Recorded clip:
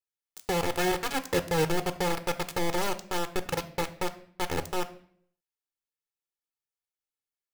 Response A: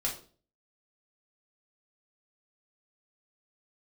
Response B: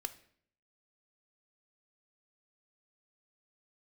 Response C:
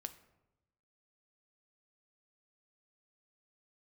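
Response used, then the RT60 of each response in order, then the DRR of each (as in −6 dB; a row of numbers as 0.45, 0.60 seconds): B; 0.40, 0.60, 0.95 seconds; −3.0, 10.5, 9.0 decibels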